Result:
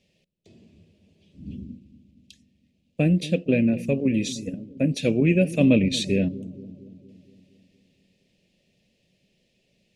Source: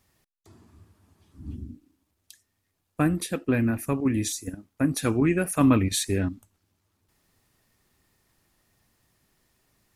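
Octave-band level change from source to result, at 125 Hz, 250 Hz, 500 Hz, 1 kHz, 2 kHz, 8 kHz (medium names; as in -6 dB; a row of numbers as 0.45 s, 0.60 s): +3.0 dB, +2.5 dB, +4.5 dB, -11.5 dB, +1.5 dB, -6.5 dB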